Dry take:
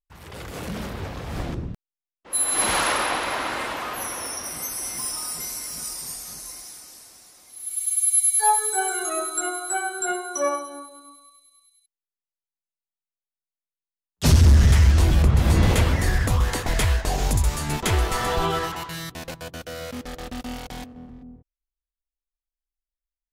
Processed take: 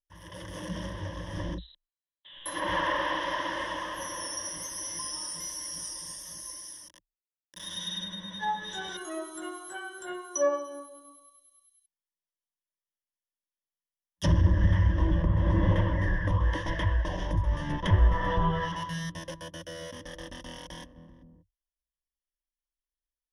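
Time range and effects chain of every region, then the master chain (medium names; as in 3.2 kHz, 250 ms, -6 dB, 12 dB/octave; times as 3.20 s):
1.58–2.46 s: frequency inversion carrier 4 kHz + compression 2.5:1, threshold -43 dBFS
6.88–8.97 s: careless resampling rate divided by 3×, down none, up hold + word length cut 6-bit, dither none
17.51–19.18 s: bass shelf 340 Hz +6.5 dB + band-stop 330 Hz, Q 6
whole clip: low-pass that closes with the level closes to 1.7 kHz, closed at -16.5 dBFS; rippled EQ curve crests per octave 1.2, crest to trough 17 dB; trim -8.5 dB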